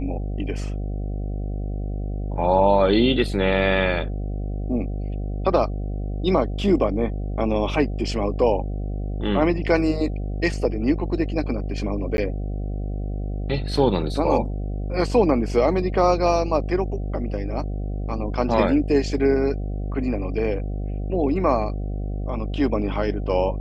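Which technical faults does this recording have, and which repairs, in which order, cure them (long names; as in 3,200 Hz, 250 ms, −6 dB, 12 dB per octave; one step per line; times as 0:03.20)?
mains buzz 50 Hz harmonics 15 −27 dBFS
0:12.17–0:12.18: drop-out 11 ms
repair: hum removal 50 Hz, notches 15
repair the gap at 0:12.17, 11 ms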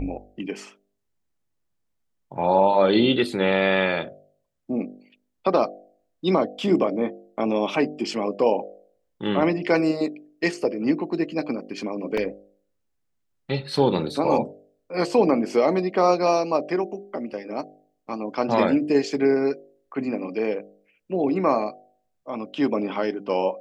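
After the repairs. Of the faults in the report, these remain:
none of them is left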